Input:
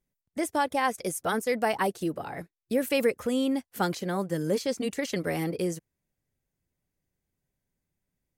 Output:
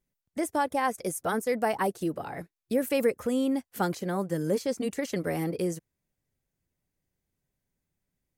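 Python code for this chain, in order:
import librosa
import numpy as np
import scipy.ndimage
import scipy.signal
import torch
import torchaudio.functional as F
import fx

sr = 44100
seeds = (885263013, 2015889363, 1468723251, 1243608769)

y = fx.dynamic_eq(x, sr, hz=3400.0, q=0.78, threshold_db=-45.0, ratio=4.0, max_db=-6)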